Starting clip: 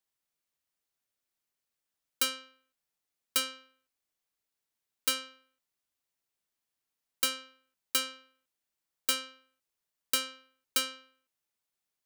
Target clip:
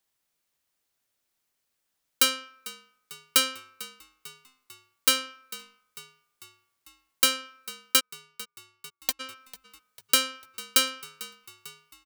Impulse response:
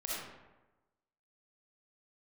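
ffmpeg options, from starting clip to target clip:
-filter_complex "[0:a]asplit=2[s0][s1];[1:a]atrim=start_sample=2205,asetrate=48510,aresample=44100[s2];[s1][s2]afir=irnorm=-1:irlink=0,volume=0.0562[s3];[s0][s3]amix=inputs=2:normalize=0,asplit=3[s4][s5][s6];[s4]afade=t=out:st=7.99:d=0.02[s7];[s5]acrusher=bits=2:mix=0:aa=0.5,afade=t=in:st=7.99:d=0.02,afade=t=out:st=9.19:d=0.02[s8];[s6]afade=t=in:st=9.19:d=0.02[s9];[s7][s8][s9]amix=inputs=3:normalize=0,asplit=2[s10][s11];[s11]asplit=5[s12][s13][s14][s15][s16];[s12]adelay=447,afreqshift=-53,volume=0.119[s17];[s13]adelay=894,afreqshift=-106,volume=0.0676[s18];[s14]adelay=1341,afreqshift=-159,volume=0.0385[s19];[s15]adelay=1788,afreqshift=-212,volume=0.0221[s20];[s16]adelay=2235,afreqshift=-265,volume=0.0126[s21];[s17][s18][s19][s20][s21]amix=inputs=5:normalize=0[s22];[s10][s22]amix=inputs=2:normalize=0,volume=2.37"

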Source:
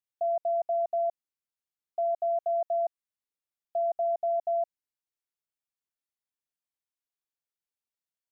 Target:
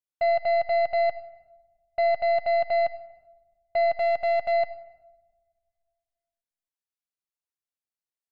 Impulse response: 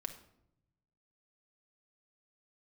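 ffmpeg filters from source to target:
-filter_complex "[0:a]asettb=1/sr,asplit=3[s0][s1][s2];[s0]atrim=end=3.964[s3];[s1]atrim=start=3.96:end=4.52,asetpts=PTS-STARTPTS,afade=t=in:d=0.004:c=qsin,afade=t=out:st=0.556:d=0.004:c=qsin,aeval=exprs='sgn(val(0))*max(abs(val(0))-0.00211,0)':c=same[s4];[s2]atrim=start=4.516[s5];[s3][s4]acrossfade=d=0.004:c1=hsin:c2=qsin[s6];[s6][s5]acrossfade=d=0.004:c1=qsin:c2=hsin,aeval=exprs='0.0668*(cos(1*acos(clip(val(0)/0.0668,-1,1)))-cos(1*PI/2))+0.0133*(cos(3*acos(clip(val(0)/0.0668,-1,1)))-cos(3*PI/2))+0.00422*(cos(6*acos(clip(val(0)/0.0668,-1,1)))-cos(6*PI/2))+0.000596*(cos(7*acos(clip(val(0)/0.0668,-1,1)))-cos(7*PI/2))':c=same,asplit=2[s7][s8];[1:a]atrim=start_sample=2205,asetrate=22932,aresample=44100[s9];[s8][s9]afir=irnorm=-1:irlink=0,volume=0.562[s10];[s7][s10]amix=inputs=2:normalize=0"

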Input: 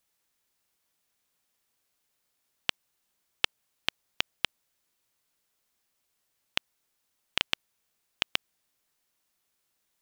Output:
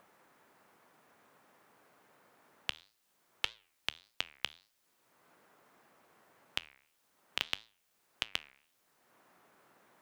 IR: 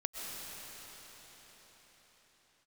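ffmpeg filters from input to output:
-filter_complex "[0:a]lowshelf=f=420:g=-3,acrossover=split=120|1700[s0][s1][s2];[s1]acompressor=mode=upward:threshold=0.00316:ratio=2.5[s3];[s0][s3][s2]amix=inputs=3:normalize=0,alimiter=limit=0.224:level=0:latency=1:release=422,flanger=delay=8.3:depth=7.4:regen=-86:speed=1.7:shape=triangular,volume=2.11"

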